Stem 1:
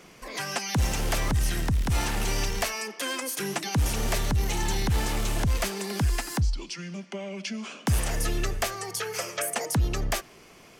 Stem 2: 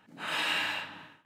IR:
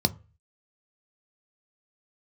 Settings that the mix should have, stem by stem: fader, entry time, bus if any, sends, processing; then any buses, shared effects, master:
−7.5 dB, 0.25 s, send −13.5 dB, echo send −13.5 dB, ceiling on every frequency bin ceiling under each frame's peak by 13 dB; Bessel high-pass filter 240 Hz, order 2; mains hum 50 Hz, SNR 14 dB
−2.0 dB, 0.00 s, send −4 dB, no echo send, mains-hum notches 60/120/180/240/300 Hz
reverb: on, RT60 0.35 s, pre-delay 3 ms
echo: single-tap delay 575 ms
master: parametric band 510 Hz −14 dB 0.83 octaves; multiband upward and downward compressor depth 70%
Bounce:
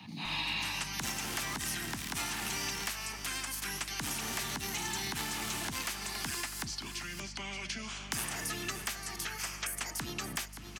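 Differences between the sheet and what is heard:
stem 1: send off
stem 2 −2.0 dB → −10.0 dB

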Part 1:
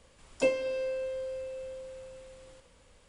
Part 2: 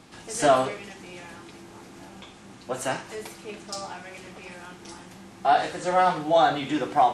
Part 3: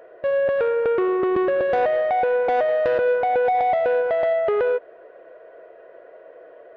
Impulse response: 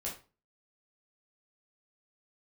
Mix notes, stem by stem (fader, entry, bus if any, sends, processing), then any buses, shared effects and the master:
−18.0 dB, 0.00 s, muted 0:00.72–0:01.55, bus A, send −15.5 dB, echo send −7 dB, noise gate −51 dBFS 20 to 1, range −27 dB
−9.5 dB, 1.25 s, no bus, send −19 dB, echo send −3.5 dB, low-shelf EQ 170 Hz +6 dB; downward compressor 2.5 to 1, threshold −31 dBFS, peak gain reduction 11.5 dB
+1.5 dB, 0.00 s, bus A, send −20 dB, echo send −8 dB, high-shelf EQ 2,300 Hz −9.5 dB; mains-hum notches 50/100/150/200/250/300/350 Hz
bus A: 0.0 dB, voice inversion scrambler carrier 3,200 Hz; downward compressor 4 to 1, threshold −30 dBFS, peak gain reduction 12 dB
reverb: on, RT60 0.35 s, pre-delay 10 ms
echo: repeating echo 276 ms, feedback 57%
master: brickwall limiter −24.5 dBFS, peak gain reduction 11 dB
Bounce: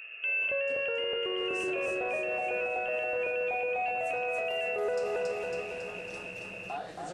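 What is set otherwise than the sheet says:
stem 1 −18.0 dB → −6.5 dB
reverb return −6.5 dB

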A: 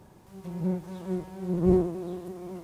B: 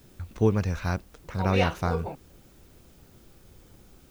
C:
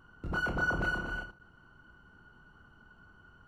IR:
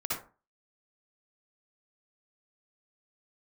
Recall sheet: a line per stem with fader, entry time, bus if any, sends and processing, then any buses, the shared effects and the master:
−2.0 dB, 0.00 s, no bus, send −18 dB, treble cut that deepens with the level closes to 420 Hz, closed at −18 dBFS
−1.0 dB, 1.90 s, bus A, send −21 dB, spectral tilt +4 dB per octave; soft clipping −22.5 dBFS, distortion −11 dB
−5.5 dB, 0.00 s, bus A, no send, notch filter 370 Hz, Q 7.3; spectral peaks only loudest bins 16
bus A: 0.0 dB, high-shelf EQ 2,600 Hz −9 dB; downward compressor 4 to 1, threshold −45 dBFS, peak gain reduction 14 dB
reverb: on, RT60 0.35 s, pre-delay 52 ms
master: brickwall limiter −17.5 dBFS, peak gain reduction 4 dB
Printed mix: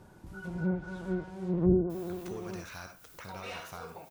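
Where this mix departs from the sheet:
stem A: send off
master: missing brickwall limiter −17.5 dBFS, peak gain reduction 4 dB

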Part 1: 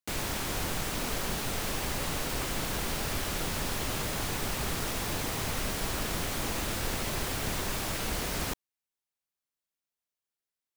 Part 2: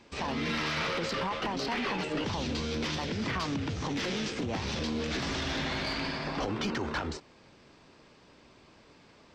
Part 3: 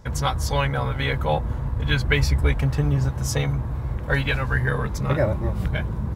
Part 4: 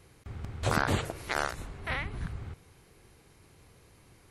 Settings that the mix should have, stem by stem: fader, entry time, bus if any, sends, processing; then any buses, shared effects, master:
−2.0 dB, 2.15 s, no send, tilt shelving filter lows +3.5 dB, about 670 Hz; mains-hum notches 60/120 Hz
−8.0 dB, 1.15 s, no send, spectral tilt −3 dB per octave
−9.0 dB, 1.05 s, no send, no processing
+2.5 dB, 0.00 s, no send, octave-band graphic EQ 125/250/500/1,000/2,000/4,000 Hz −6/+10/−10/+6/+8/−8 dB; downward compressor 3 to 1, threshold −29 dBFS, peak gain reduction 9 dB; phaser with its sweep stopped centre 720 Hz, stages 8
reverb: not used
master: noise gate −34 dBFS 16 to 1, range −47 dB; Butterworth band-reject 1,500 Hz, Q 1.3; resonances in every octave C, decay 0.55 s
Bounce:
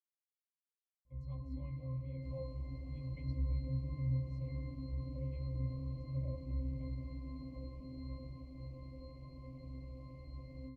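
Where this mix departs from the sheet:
stem 4: muted
master: missing noise gate −34 dBFS 16 to 1, range −47 dB

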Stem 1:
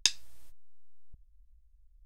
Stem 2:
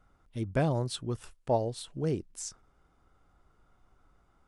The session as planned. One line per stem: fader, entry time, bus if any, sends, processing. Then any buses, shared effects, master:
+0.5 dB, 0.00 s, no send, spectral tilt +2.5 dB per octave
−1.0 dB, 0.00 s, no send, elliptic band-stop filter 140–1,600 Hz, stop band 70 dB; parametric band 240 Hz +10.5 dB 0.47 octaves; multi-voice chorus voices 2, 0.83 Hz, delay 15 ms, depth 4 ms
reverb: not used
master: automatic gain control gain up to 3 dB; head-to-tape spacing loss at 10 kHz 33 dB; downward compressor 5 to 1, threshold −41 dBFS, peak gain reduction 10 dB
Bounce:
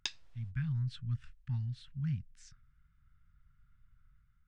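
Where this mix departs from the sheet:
stem 2: missing multi-voice chorus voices 2, 0.83 Hz, delay 15 ms, depth 4 ms
master: missing downward compressor 5 to 1, threshold −41 dBFS, peak gain reduction 10 dB

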